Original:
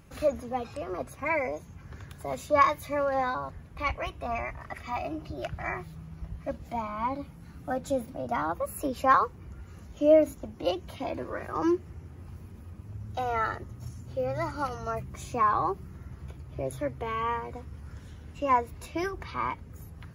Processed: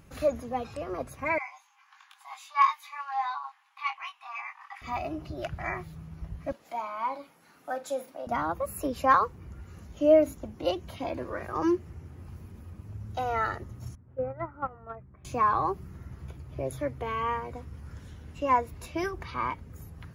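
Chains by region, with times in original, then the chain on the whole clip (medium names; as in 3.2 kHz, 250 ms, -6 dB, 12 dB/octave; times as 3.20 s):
1.38–4.82 s: rippled Chebyshev high-pass 770 Hz, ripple 6 dB + treble shelf 10 kHz -9 dB + doubling 21 ms -5 dB
6.52–8.27 s: high-pass 510 Hz + flutter echo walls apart 7.9 m, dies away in 0.2 s
13.95–15.25 s: inverse Chebyshev low-pass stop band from 6 kHz, stop band 60 dB + gate -30 dBFS, range -12 dB
whole clip: none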